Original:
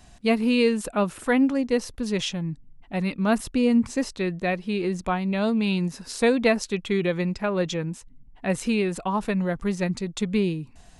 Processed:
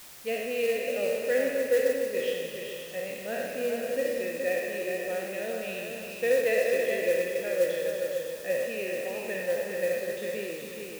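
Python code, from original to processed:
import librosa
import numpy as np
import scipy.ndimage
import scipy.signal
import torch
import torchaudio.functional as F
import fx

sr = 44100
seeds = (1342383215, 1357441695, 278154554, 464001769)

p1 = fx.spec_trails(x, sr, decay_s=1.42)
p2 = fx.vowel_filter(p1, sr, vowel='e')
p3 = p2 + fx.echo_multitap(p2, sr, ms=(40, 59, 266, 420, 557, 895), db=(-17.5, -9.5, -9.5, -5.0, -10.0, -17.0), dry=0)
p4 = fx.quant_dither(p3, sr, seeds[0], bits=8, dither='triangular')
y = fx.mod_noise(p4, sr, seeds[1], snr_db=20)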